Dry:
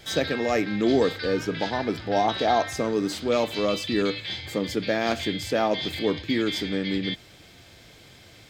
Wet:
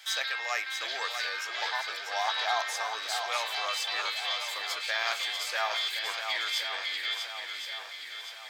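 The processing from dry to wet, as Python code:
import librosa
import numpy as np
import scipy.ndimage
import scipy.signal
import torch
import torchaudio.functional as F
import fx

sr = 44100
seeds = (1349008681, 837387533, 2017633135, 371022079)

p1 = scipy.signal.sosfilt(scipy.signal.butter(4, 950.0, 'highpass', fs=sr, output='sos'), x)
y = p1 + fx.echo_swing(p1, sr, ms=1071, ratio=1.5, feedback_pct=45, wet_db=-6.5, dry=0)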